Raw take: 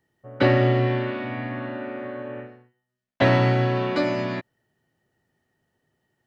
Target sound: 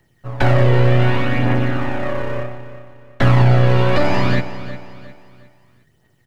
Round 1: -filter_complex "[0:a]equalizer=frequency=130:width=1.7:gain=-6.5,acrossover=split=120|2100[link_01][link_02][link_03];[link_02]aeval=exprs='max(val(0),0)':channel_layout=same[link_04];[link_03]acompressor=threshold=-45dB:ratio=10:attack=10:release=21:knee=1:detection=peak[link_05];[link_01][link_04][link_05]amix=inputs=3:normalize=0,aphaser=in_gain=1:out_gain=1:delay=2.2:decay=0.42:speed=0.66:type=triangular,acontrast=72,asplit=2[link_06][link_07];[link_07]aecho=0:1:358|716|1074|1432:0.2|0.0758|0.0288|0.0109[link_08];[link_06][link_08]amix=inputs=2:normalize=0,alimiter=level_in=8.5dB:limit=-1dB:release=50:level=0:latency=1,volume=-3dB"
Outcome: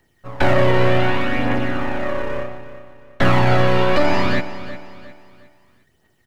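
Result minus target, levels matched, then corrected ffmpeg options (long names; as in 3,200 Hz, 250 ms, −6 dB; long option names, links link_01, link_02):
125 Hz band −5.5 dB
-filter_complex "[0:a]equalizer=frequency=130:width=1.7:gain=4,acrossover=split=120|2100[link_01][link_02][link_03];[link_02]aeval=exprs='max(val(0),0)':channel_layout=same[link_04];[link_03]acompressor=threshold=-45dB:ratio=10:attack=10:release=21:knee=1:detection=peak[link_05];[link_01][link_04][link_05]amix=inputs=3:normalize=0,aphaser=in_gain=1:out_gain=1:delay=2.2:decay=0.42:speed=0.66:type=triangular,acontrast=72,asplit=2[link_06][link_07];[link_07]aecho=0:1:358|716|1074|1432:0.2|0.0758|0.0288|0.0109[link_08];[link_06][link_08]amix=inputs=2:normalize=0,alimiter=level_in=8.5dB:limit=-1dB:release=50:level=0:latency=1,volume=-3dB"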